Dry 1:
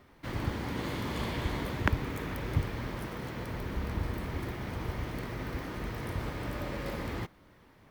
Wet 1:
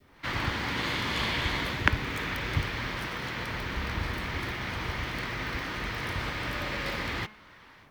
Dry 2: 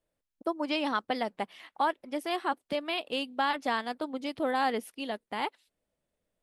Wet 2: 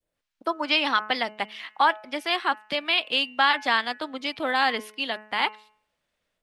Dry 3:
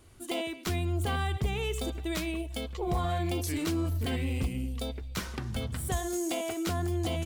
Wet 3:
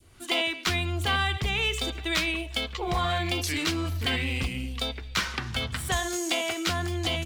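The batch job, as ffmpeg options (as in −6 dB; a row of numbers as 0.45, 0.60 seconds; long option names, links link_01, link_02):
-filter_complex "[0:a]bandreject=frequency=213.5:width_type=h:width=4,bandreject=frequency=427:width_type=h:width=4,bandreject=frequency=640.5:width_type=h:width=4,bandreject=frequency=854:width_type=h:width=4,bandreject=frequency=1067.5:width_type=h:width=4,bandreject=frequency=1281:width_type=h:width=4,bandreject=frequency=1494.5:width_type=h:width=4,bandreject=frequency=1708:width_type=h:width=4,bandreject=frequency=1921.5:width_type=h:width=4,bandreject=frequency=2135:width_type=h:width=4,bandreject=frequency=2348.5:width_type=h:width=4,bandreject=frequency=2562:width_type=h:width=4,bandreject=frequency=2775.5:width_type=h:width=4,bandreject=frequency=2989:width_type=h:width=4,adynamicequalizer=threshold=0.00501:dfrequency=1100:dqfactor=0.91:tfrequency=1100:tqfactor=0.91:attack=5:release=100:ratio=0.375:range=2:mode=cutabove:tftype=bell,acrossover=split=380|970|5600[link_01][link_02][link_03][link_04];[link_03]dynaudnorm=framelen=120:gausssize=3:maxgain=13dB[link_05];[link_01][link_02][link_05][link_04]amix=inputs=4:normalize=0"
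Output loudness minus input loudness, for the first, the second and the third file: +4.5, +7.5, +5.0 LU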